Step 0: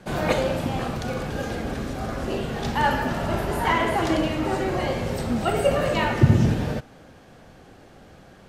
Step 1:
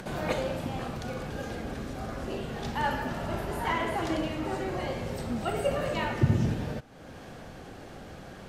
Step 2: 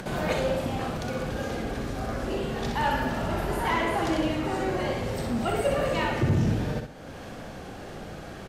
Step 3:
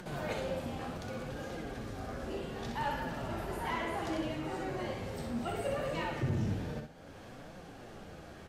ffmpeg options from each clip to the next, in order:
ffmpeg -i in.wav -af "acompressor=mode=upward:threshold=-25dB:ratio=2.5,volume=-7.5dB" out.wav
ffmpeg -i in.wav -af "asoftclip=type=tanh:threshold=-22dB,aecho=1:1:63|126|189|252:0.501|0.17|0.0579|0.0197,volume=4dB" out.wav
ffmpeg -i in.wav -af "flanger=delay=5.4:depth=8.1:regen=55:speed=0.66:shape=triangular,volume=-5.5dB" out.wav

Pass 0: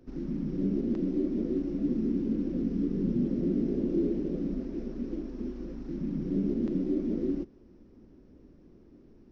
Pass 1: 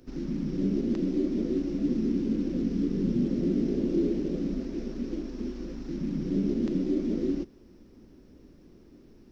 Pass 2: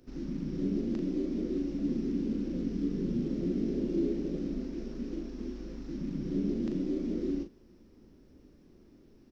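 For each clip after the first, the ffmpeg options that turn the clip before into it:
ffmpeg -i in.wav -af "highshelf=frequency=2300:gain=11.5,volume=1.5dB" out.wav
ffmpeg -i in.wav -filter_complex "[0:a]asplit=2[link_01][link_02];[link_02]adelay=39,volume=-7dB[link_03];[link_01][link_03]amix=inputs=2:normalize=0,volume=-5dB" out.wav

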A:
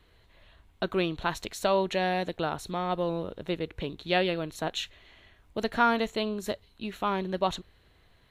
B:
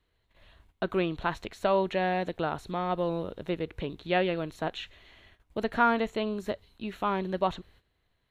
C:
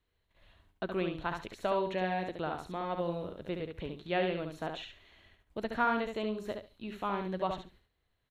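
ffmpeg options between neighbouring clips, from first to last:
ffmpeg -i in.wav -filter_complex "[0:a]agate=range=-13dB:threshold=-57dB:ratio=16:detection=peak,acrossover=split=3100[link_01][link_02];[link_02]acompressor=threshold=-53dB:ratio=4:attack=1:release=60[link_03];[link_01][link_03]amix=inputs=2:normalize=0" out.wav
ffmpeg -i in.wav -af "aecho=1:1:70|140|210:0.531|0.0956|0.0172,volume=-6dB" out.wav

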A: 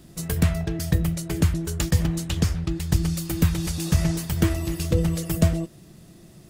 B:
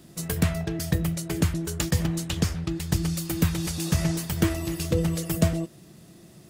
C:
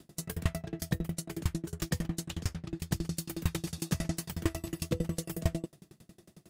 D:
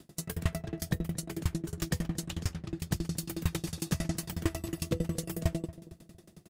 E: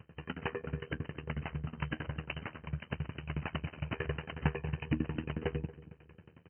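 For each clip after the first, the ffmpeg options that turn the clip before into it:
ffmpeg -i in.wav -af "highpass=frequency=120:poles=1" out.wav
ffmpeg -i in.wav -af "aeval=exprs='val(0)*pow(10,-30*if(lt(mod(11*n/s,1),2*abs(11)/1000),1-mod(11*n/s,1)/(2*abs(11)/1000),(mod(11*n/s,1)-2*abs(11)/1000)/(1-2*abs(11)/1000))/20)':channel_layout=same" out.wav
ffmpeg -i in.wav -filter_complex "[0:a]asplit=2[link_01][link_02];[link_02]asoftclip=type=tanh:threshold=-24dB,volume=-9dB[link_03];[link_01][link_03]amix=inputs=2:normalize=0,asplit=2[link_04][link_05];[link_05]adelay=230,lowpass=frequency=860:poles=1,volume=-15.5dB,asplit=2[link_06][link_07];[link_07]adelay=230,lowpass=frequency=860:poles=1,volume=0.46,asplit=2[link_08][link_09];[link_09]adelay=230,lowpass=frequency=860:poles=1,volume=0.46,asplit=2[link_10][link_11];[link_11]adelay=230,lowpass=frequency=860:poles=1,volume=0.46[link_12];[link_04][link_06][link_08][link_10][link_12]amix=inputs=5:normalize=0,volume=-1.5dB" out.wav
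ffmpeg -i in.wav -af "aeval=exprs='val(0)*sin(2*PI*39*n/s)':channel_layout=same,afftfilt=real='re*between(b*sr/4096,280,3300)':imag='im*between(b*sr/4096,280,3300)':win_size=4096:overlap=0.75,afreqshift=-220,volume=7dB" out.wav

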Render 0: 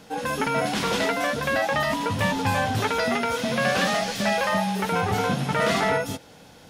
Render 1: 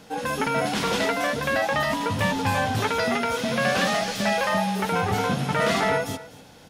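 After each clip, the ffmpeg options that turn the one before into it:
ffmpeg -i in.wav -af "aecho=1:1:249:0.126" out.wav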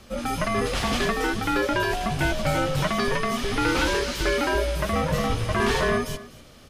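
ffmpeg -i in.wav -af "afreqshift=-250" out.wav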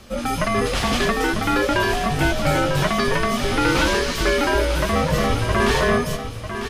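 ffmpeg -i in.wav -af "aecho=1:1:948:0.335,volume=4dB" out.wav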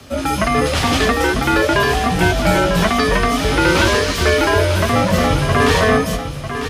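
ffmpeg -i in.wav -af "afreqshift=32,volume=4.5dB" out.wav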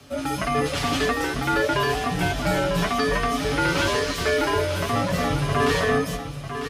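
ffmpeg -i in.wav -af "aecho=1:1:7:0.57,volume=-9dB" out.wav

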